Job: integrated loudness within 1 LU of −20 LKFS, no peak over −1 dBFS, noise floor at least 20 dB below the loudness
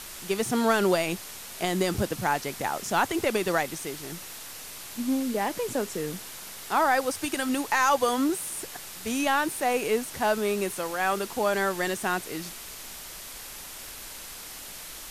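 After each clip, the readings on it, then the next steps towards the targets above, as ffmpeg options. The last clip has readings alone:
background noise floor −42 dBFS; target noise floor −48 dBFS; integrated loudness −27.5 LKFS; sample peak −11.0 dBFS; target loudness −20.0 LKFS
→ -af "afftdn=noise_reduction=6:noise_floor=-42"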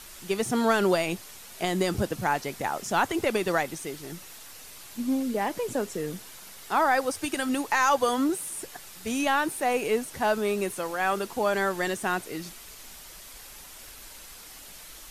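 background noise floor −46 dBFS; target noise floor −48 dBFS
→ -af "afftdn=noise_reduction=6:noise_floor=-46"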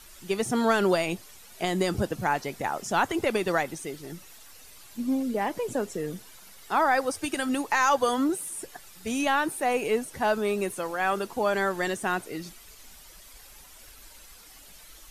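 background noise floor −50 dBFS; integrated loudness −27.5 LKFS; sample peak −11.5 dBFS; target loudness −20.0 LKFS
→ -af "volume=7.5dB"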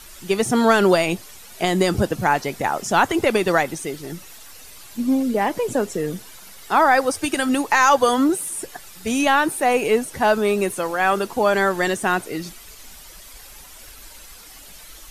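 integrated loudness −20.0 LKFS; sample peak −4.0 dBFS; background noise floor −43 dBFS

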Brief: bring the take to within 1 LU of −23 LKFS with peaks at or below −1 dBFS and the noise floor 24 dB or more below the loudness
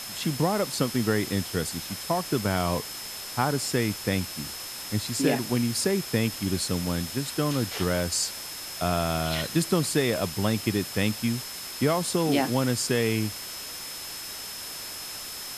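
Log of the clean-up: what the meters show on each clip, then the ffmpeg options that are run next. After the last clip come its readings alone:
interfering tone 5,200 Hz; level of the tone −40 dBFS; background noise floor −38 dBFS; target noise floor −52 dBFS; integrated loudness −27.5 LKFS; sample peak −10.0 dBFS; target loudness −23.0 LKFS
→ -af "bandreject=frequency=5200:width=30"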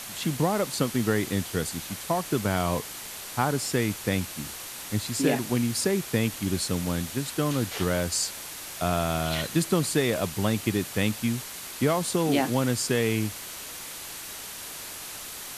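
interfering tone none found; background noise floor −39 dBFS; target noise floor −52 dBFS
→ -af "afftdn=noise_reduction=13:noise_floor=-39"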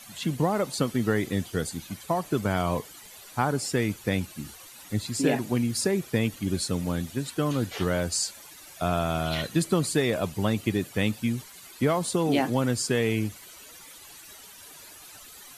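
background noise floor −48 dBFS; target noise floor −52 dBFS
→ -af "afftdn=noise_reduction=6:noise_floor=-48"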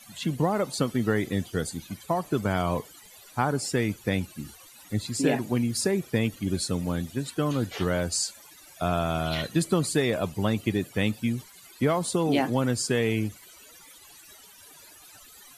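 background noise floor −51 dBFS; target noise floor −52 dBFS
→ -af "afftdn=noise_reduction=6:noise_floor=-51"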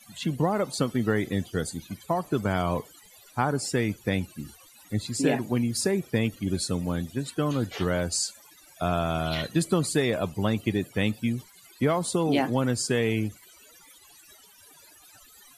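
background noise floor −54 dBFS; integrated loudness −27.5 LKFS; sample peak −10.0 dBFS; target loudness −23.0 LKFS
→ -af "volume=4.5dB"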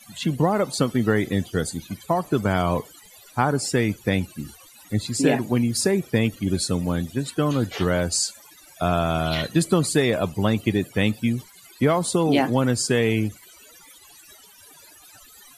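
integrated loudness −23.0 LKFS; sample peak −5.5 dBFS; background noise floor −50 dBFS

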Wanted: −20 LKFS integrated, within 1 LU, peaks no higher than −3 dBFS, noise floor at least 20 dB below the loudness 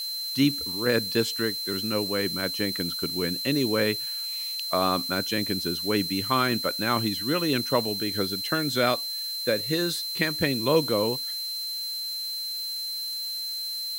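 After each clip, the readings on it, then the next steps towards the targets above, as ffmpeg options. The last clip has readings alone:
interfering tone 4,100 Hz; level of the tone −30 dBFS; background noise floor −32 dBFS; target noise floor −46 dBFS; integrated loudness −26.0 LKFS; sample peak −9.0 dBFS; target loudness −20.0 LKFS
→ -af "bandreject=frequency=4100:width=30"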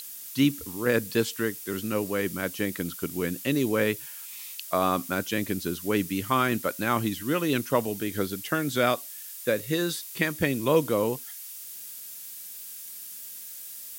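interfering tone none found; background noise floor −41 dBFS; target noise floor −49 dBFS
→ -af "afftdn=noise_reduction=8:noise_floor=-41"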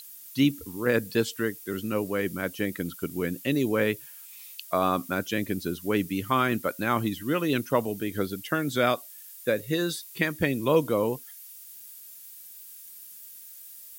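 background noise floor −46 dBFS; target noise floor −48 dBFS
→ -af "afftdn=noise_reduction=6:noise_floor=-46"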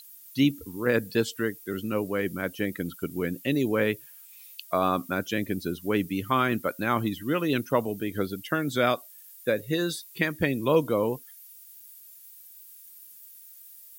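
background noise floor −50 dBFS; integrated loudness −28.0 LKFS; sample peak −9.5 dBFS; target loudness −20.0 LKFS
→ -af "volume=8dB,alimiter=limit=-3dB:level=0:latency=1"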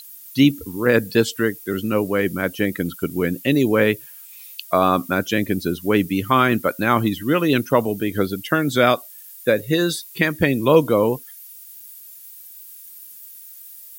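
integrated loudness −20.0 LKFS; sample peak −3.0 dBFS; background noise floor −42 dBFS

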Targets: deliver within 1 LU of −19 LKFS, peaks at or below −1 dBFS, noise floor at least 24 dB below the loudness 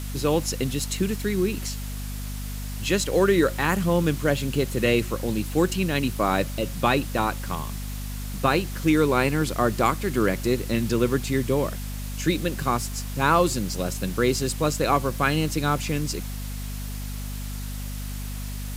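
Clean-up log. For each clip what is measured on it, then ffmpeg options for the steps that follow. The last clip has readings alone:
mains hum 50 Hz; hum harmonics up to 250 Hz; level of the hum −30 dBFS; background noise floor −32 dBFS; target noise floor −49 dBFS; integrated loudness −25.0 LKFS; sample peak −6.5 dBFS; target loudness −19.0 LKFS
→ -af "bandreject=frequency=50:width_type=h:width=4,bandreject=frequency=100:width_type=h:width=4,bandreject=frequency=150:width_type=h:width=4,bandreject=frequency=200:width_type=h:width=4,bandreject=frequency=250:width_type=h:width=4"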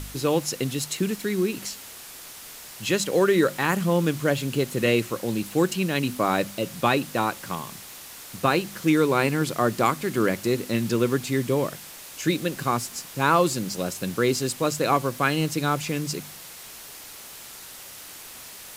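mains hum none found; background noise floor −42 dBFS; target noise floor −49 dBFS
→ -af "afftdn=noise_reduction=7:noise_floor=-42"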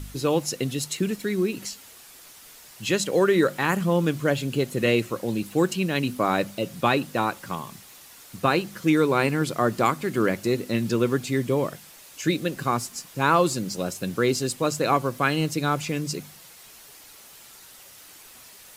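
background noise floor −48 dBFS; target noise floor −49 dBFS
→ -af "afftdn=noise_reduction=6:noise_floor=-48"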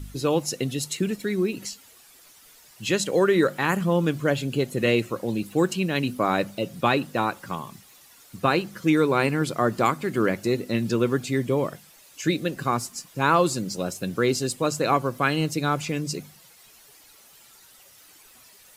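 background noise floor −53 dBFS; integrated loudness −24.5 LKFS; sample peak −7.0 dBFS; target loudness −19.0 LKFS
→ -af "volume=5.5dB"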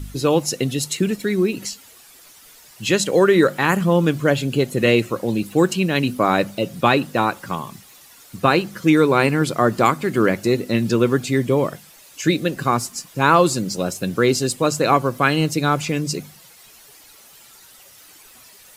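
integrated loudness −19.0 LKFS; sample peak −1.5 dBFS; background noise floor −47 dBFS

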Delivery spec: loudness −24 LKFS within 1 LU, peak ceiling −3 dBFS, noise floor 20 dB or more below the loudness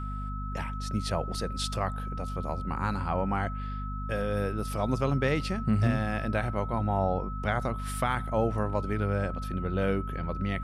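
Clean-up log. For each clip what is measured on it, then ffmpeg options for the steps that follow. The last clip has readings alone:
mains hum 50 Hz; hum harmonics up to 250 Hz; level of the hum −33 dBFS; interfering tone 1,300 Hz; level of the tone −39 dBFS; integrated loudness −30.5 LKFS; sample peak −14.5 dBFS; target loudness −24.0 LKFS
→ -af "bandreject=frequency=50:width_type=h:width=6,bandreject=frequency=100:width_type=h:width=6,bandreject=frequency=150:width_type=h:width=6,bandreject=frequency=200:width_type=h:width=6,bandreject=frequency=250:width_type=h:width=6"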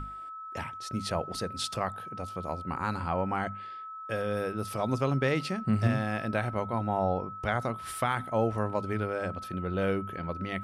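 mains hum none found; interfering tone 1,300 Hz; level of the tone −39 dBFS
→ -af "bandreject=frequency=1300:width=30"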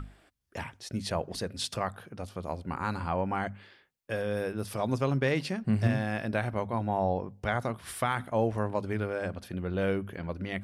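interfering tone none found; integrated loudness −32.0 LKFS; sample peak −15.0 dBFS; target loudness −24.0 LKFS
→ -af "volume=8dB"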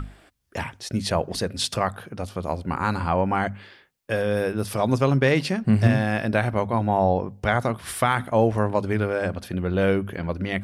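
integrated loudness −24.0 LKFS; sample peak −7.0 dBFS; background noise floor −55 dBFS

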